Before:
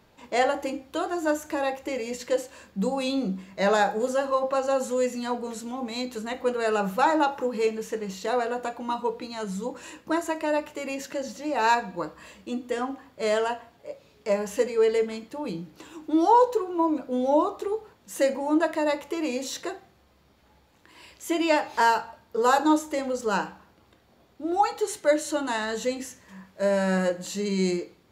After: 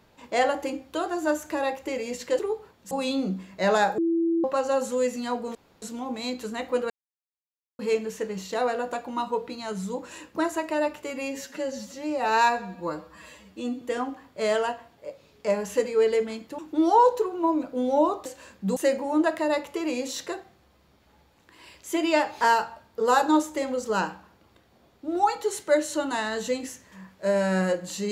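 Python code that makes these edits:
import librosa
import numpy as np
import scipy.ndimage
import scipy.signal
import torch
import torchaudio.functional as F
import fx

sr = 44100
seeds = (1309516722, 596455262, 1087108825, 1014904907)

y = fx.edit(x, sr, fx.swap(start_s=2.39, length_s=0.51, other_s=17.61, other_length_s=0.52),
    fx.bleep(start_s=3.97, length_s=0.46, hz=333.0, db=-20.5),
    fx.insert_room_tone(at_s=5.54, length_s=0.27),
    fx.silence(start_s=6.62, length_s=0.89),
    fx.stretch_span(start_s=10.82, length_s=1.81, factor=1.5),
    fx.cut(start_s=15.4, length_s=0.54), tone=tone)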